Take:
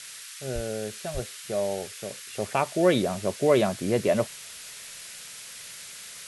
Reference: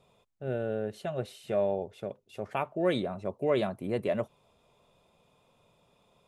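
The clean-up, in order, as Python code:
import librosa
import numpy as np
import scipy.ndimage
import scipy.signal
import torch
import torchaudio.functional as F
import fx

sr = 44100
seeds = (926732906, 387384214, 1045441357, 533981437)

y = fx.highpass(x, sr, hz=140.0, slope=24, at=(0.54, 0.66), fade=0.02)
y = fx.highpass(y, sr, hz=140.0, slope=24, at=(1.13, 1.25), fade=0.02)
y = fx.noise_reduce(y, sr, print_start_s=5.14, print_end_s=5.64, reduce_db=25.0)
y = fx.gain(y, sr, db=fx.steps((0.0, 0.0), (2.12, -6.5)))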